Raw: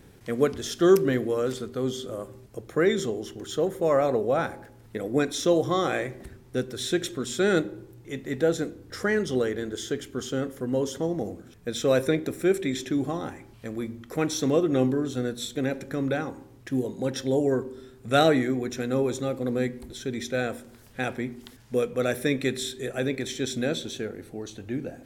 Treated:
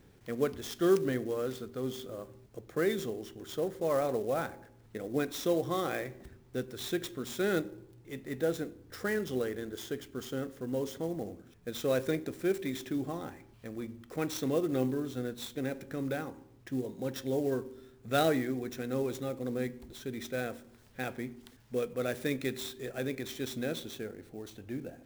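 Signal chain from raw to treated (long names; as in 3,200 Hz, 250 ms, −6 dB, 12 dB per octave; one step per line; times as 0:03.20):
converter with an unsteady clock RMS 0.022 ms
level −7.5 dB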